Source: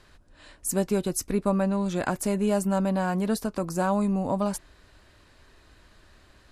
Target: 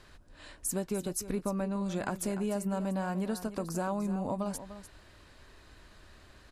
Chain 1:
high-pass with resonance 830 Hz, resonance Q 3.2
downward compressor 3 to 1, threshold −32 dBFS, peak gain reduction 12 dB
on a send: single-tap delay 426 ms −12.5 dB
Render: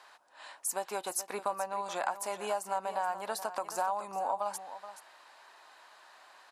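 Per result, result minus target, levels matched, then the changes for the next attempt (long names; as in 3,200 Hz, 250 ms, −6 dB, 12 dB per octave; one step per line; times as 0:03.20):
echo 129 ms late; 1,000 Hz band +8.5 dB
change: single-tap delay 297 ms −12.5 dB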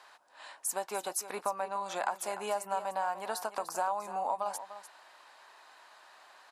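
1,000 Hz band +8.5 dB
remove: high-pass with resonance 830 Hz, resonance Q 3.2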